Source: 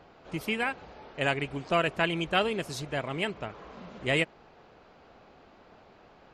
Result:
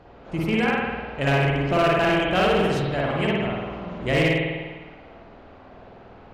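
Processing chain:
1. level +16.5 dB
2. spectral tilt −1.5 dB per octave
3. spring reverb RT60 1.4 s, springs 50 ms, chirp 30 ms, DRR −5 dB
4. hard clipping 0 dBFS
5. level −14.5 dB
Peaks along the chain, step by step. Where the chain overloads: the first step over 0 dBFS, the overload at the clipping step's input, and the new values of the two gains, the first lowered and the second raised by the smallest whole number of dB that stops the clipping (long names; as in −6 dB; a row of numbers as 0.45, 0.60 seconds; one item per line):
+4.0, +4.5, +8.0, 0.0, −14.5 dBFS
step 1, 8.0 dB
step 1 +8.5 dB, step 5 −6.5 dB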